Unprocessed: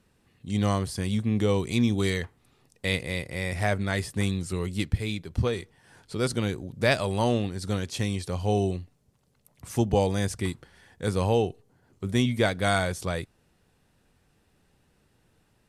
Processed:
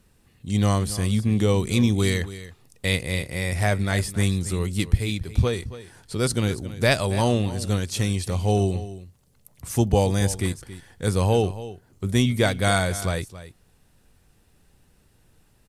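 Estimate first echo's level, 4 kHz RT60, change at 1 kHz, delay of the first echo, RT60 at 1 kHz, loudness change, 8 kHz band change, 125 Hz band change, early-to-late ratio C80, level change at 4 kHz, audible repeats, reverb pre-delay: -15.0 dB, none, +2.5 dB, 0.275 s, none, +4.0 dB, +7.5 dB, +5.5 dB, none, +4.0 dB, 1, none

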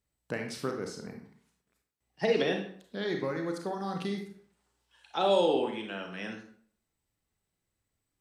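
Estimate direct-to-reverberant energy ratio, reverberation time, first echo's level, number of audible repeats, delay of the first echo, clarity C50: 3.0 dB, 0.55 s, none, none, none, 6.0 dB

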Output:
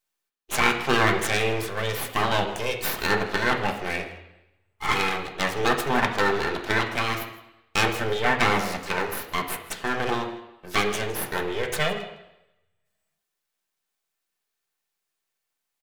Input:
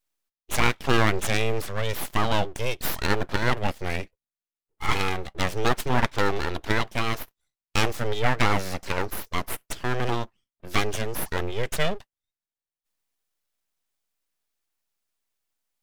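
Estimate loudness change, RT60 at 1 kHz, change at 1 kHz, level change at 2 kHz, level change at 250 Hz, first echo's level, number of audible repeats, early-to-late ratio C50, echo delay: +2.0 dB, 0.85 s, +2.5 dB, +3.5 dB, +0.5 dB, -17.5 dB, 1, 8.5 dB, 0.161 s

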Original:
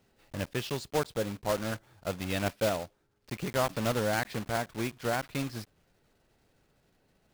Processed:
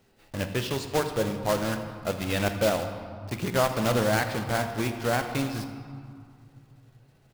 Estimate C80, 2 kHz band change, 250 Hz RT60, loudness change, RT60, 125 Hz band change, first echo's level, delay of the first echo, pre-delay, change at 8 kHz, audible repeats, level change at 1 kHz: 8.5 dB, +5.0 dB, 3.1 s, +5.0 dB, 2.2 s, +6.0 dB, -16.5 dB, 82 ms, 3 ms, +4.5 dB, 1, +5.0 dB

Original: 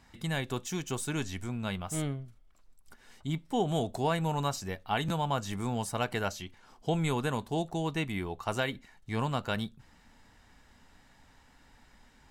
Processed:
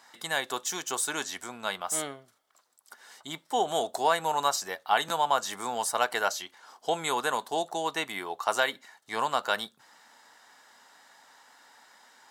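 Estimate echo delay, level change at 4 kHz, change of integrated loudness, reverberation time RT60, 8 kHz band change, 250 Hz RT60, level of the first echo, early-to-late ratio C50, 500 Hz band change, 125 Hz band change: none, +6.5 dB, +3.5 dB, none, +9.0 dB, none, none, none, +3.0 dB, -17.5 dB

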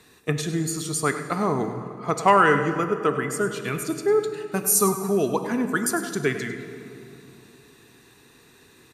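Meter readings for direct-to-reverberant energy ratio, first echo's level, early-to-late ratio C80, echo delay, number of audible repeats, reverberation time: 7.0 dB, -12.5 dB, 8.5 dB, 0.101 s, 1, 2.8 s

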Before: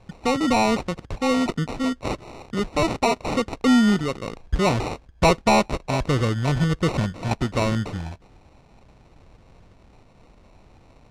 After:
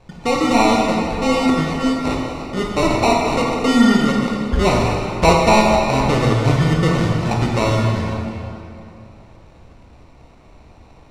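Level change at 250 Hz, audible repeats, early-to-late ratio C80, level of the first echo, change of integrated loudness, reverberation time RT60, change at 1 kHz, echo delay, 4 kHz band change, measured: +5.5 dB, none, 1.5 dB, none, +6.0 dB, 2.8 s, +6.5 dB, none, +5.5 dB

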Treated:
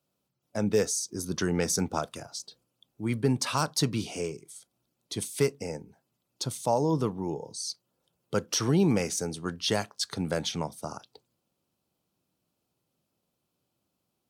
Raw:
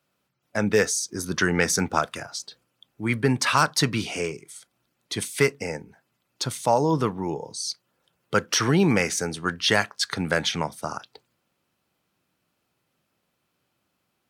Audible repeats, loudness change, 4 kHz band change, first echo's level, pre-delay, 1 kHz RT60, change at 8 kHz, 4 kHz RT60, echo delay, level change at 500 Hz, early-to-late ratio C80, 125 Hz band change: none, -5.0 dB, -6.0 dB, none, none, none, -4.0 dB, none, none, -4.0 dB, none, -3.0 dB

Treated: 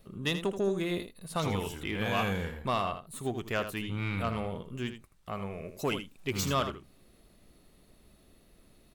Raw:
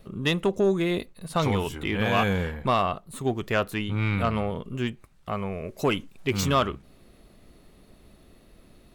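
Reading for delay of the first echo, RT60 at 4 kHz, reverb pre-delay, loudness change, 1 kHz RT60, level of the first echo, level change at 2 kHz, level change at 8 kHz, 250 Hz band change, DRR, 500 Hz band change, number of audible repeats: 80 ms, none, none, -6.5 dB, none, -10.0 dB, -6.0 dB, -2.5 dB, -7.0 dB, none, -7.0 dB, 1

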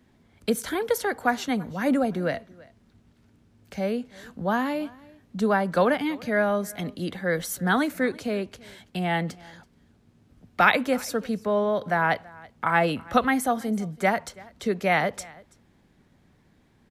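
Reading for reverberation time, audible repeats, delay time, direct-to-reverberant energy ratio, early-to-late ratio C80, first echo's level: none, 1, 0.331 s, none, none, -23.0 dB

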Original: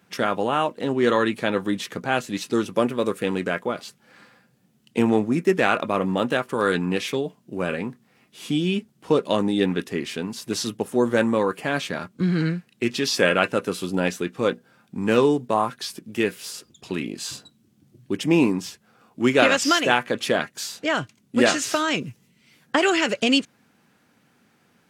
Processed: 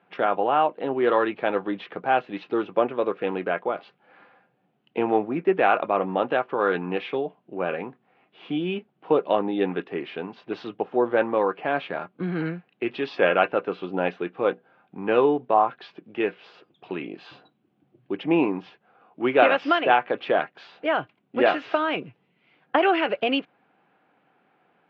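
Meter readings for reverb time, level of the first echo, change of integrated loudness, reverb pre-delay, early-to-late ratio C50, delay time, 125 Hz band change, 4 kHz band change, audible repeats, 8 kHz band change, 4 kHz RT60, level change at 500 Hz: none, none, -1.5 dB, none, none, none, -9.0 dB, -8.0 dB, none, under -35 dB, none, 0.0 dB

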